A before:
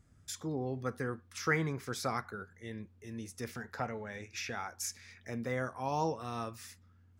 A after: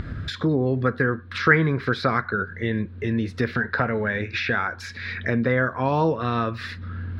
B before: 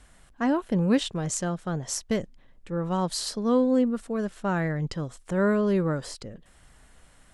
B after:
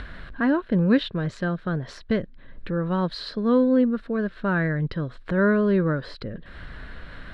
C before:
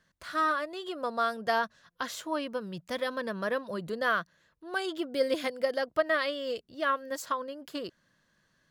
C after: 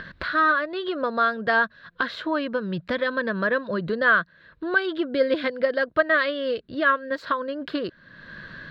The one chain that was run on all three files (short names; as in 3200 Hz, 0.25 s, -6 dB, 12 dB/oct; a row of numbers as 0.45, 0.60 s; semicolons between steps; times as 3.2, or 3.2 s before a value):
thirty-one-band EQ 800 Hz -9 dB, 1600 Hz +8 dB, 4000 Hz +9 dB, 6300 Hz -6 dB, 12500 Hz -4 dB; upward compressor, threshold -27 dBFS; air absorption 320 m; match loudness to -24 LUFS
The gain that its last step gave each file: +13.0, +3.5, +7.5 dB